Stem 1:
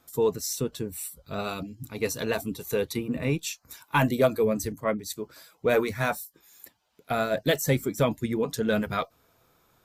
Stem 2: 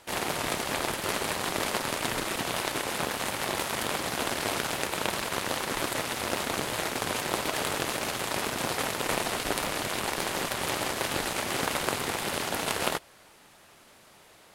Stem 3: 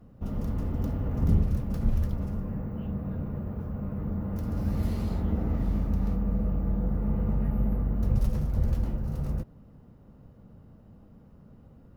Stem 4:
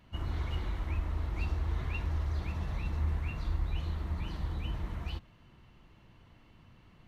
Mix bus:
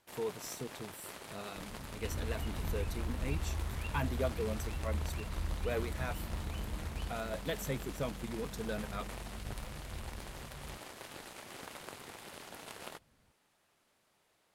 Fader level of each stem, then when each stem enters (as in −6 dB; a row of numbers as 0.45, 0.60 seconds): −13.5, −18.5, −19.0, −5.0 decibels; 0.00, 0.00, 1.35, 1.90 seconds